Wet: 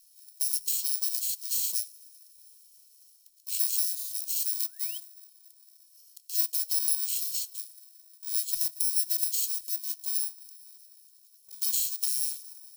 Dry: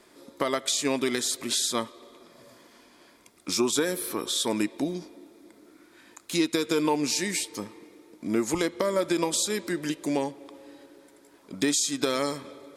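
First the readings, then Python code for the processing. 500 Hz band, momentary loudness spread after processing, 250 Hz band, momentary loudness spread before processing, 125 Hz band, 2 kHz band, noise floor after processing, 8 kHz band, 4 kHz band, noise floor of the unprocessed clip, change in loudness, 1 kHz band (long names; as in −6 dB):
below −40 dB, 11 LU, below −40 dB, 13 LU, below −40 dB, −21.0 dB, −60 dBFS, 0.0 dB, −5.5 dB, −57 dBFS, 0.0 dB, below −40 dB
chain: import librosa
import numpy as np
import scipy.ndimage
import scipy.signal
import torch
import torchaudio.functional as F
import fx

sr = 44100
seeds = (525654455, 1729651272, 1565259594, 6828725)

y = fx.bit_reversed(x, sr, seeds[0], block=64)
y = fx.spec_paint(y, sr, seeds[1], shape='rise', start_s=4.14, length_s=0.84, low_hz=260.0, high_hz=3300.0, level_db=-33.0)
y = scipy.signal.sosfilt(scipy.signal.cheby2(4, 80, [140.0, 820.0], 'bandstop', fs=sr, output='sos'), y)
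y = y * 10.0 ** (-1.0 / 20.0)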